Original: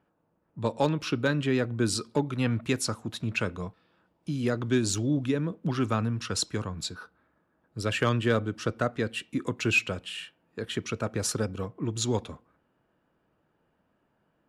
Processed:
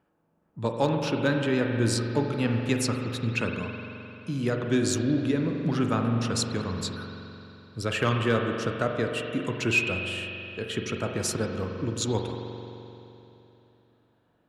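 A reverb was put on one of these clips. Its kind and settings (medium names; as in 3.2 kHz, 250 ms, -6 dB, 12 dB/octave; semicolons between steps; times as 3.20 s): spring tank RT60 3.1 s, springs 43 ms, chirp 55 ms, DRR 2.5 dB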